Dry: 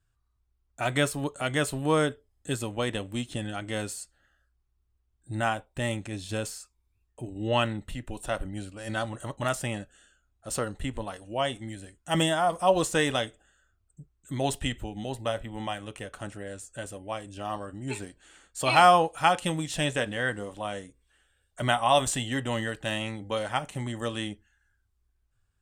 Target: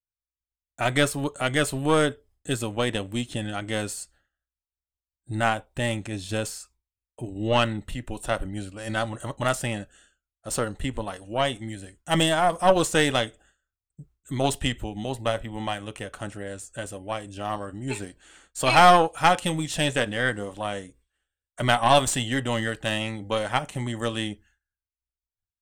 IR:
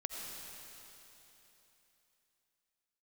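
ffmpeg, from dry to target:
-af "aeval=exprs='0.562*(cos(1*acos(clip(val(0)/0.562,-1,1)))-cos(1*PI/2))+0.0112*(cos(5*acos(clip(val(0)/0.562,-1,1)))-cos(5*PI/2))+0.0501*(cos(6*acos(clip(val(0)/0.562,-1,1)))-cos(6*PI/2))':c=same,agate=range=0.0224:threshold=0.002:ratio=3:detection=peak,volume=1.33"

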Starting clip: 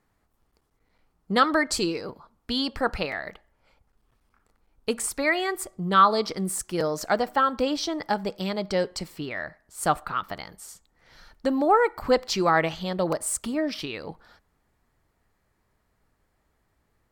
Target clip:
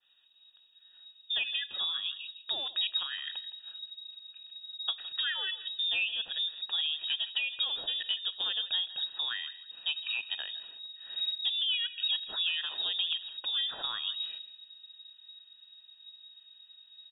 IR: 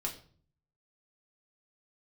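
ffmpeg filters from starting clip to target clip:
-af "asubboost=boost=7.5:cutoff=71,acompressor=threshold=0.0126:ratio=5,asoftclip=type=tanh:threshold=0.0501,asuperstop=centerf=1600:order=8:qfactor=3.1,aecho=1:1:163|326:0.158|0.0349,lowpass=f=3200:t=q:w=0.5098,lowpass=f=3200:t=q:w=0.6013,lowpass=f=3200:t=q:w=0.9,lowpass=f=3200:t=q:w=2.563,afreqshift=-3800,adynamicequalizer=threshold=0.00251:dfrequency=1700:dqfactor=0.7:tfrequency=1700:tqfactor=0.7:attack=5:release=100:ratio=0.375:range=2.5:mode=boostabove:tftype=highshelf,volume=1.41"

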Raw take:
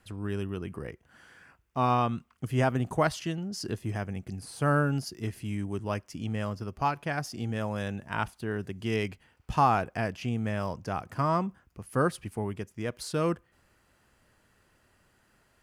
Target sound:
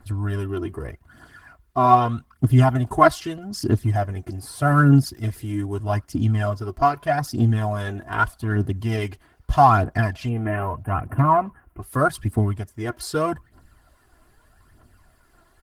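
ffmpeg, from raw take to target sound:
-filter_complex "[0:a]aecho=1:1:2.9:0.9,asettb=1/sr,asplit=3[s0][s1][s2];[s0]atrim=end=3.614[s3];[s1]atrim=start=3.61:end=4.4,asetpts=PTS-STARTPTS,afade=t=in:d=0.004:c=qsin,afade=t=out:st=0.786:d=0.004:c=qsin,asoftclip=type=hard:threshold=0.1[s4];[s2]atrim=start=4.396[s5];[s3][s4]acrossfade=d=0.004:c1=hsin:c2=qsin[s6];[s6][s5]acrossfade=d=0.004:c1=qsin:c2=hsin,equalizer=f=160:t=o:w=0.67:g=9,equalizer=f=400:t=o:w=0.67:g=-7,equalizer=f=2500:t=o:w=0.67:g=-10,equalizer=f=6300:t=o:w=0.67:g=-7,aphaser=in_gain=1:out_gain=1:delay=3.1:decay=0.61:speed=0.81:type=triangular,asplit=3[s7][s8][s9];[s7]afade=t=out:st=10.28:d=0.02[s10];[s8]asuperstop=centerf=5300:order=20:qfactor=0.9,afade=t=in:st=10.28:d=0.02,afade=t=out:st=11.81:d=0.02[s11];[s9]afade=t=in:st=11.81:d=0.02[s12];[s10][s11][s12]amix=inputs=3:normalize=0,volume=2.11" -ar 48000 -c:a libopus -b:a 16k

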